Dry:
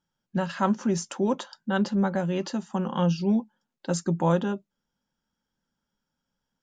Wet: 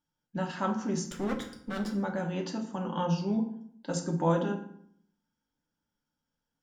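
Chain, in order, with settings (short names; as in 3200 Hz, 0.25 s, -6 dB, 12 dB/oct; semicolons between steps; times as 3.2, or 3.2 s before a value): 1.05–1.91 minimum comb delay 0.57 ms; FDN reverb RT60 0.65 s, low-frequency decay 1.3×, high-frequency decay 0.7×, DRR 2 dB; gain -6 dB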